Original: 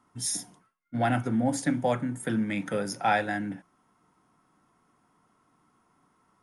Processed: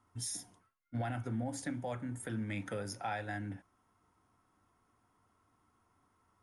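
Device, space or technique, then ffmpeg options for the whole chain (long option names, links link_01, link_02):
car stereo with a boomy subwoofer: -af "lowshelf=frequency=120:width_type=q:width=3:gain=6.5,alimiter=limit=-22.5dB:level=0:latency=1:release=277,volume=-6dB"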